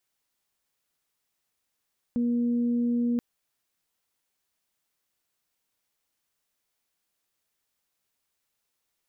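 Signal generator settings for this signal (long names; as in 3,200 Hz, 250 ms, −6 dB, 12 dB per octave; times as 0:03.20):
steady harmonic partials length 1.03 s, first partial 239 Hz, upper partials −15.5 dB, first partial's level −22.5 dB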